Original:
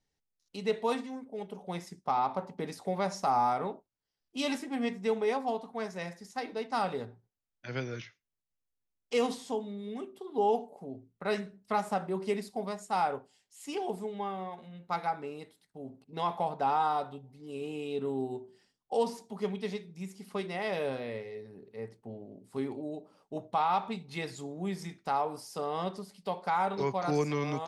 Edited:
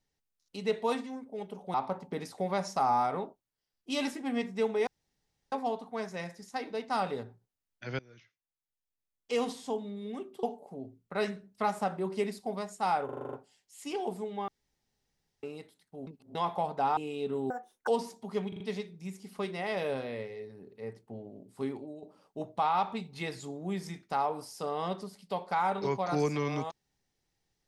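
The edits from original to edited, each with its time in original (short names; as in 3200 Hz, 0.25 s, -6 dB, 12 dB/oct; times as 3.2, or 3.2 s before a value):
1.74–2.21 cut
5.34 insert room tone 0.65 s
7.81–9.58 fade in, from -23 dB
10.25–10.53 cut
13.15 stutter 0.04 s, 8 plays
14.3–15.25 room tone
15.89–16.17 reverse
16.79–17.69 cut
18.22–18.95 speed 195%
19.56 stutter 0.04 s, 4 plays
22.58–22.98 fade out, to -10 dB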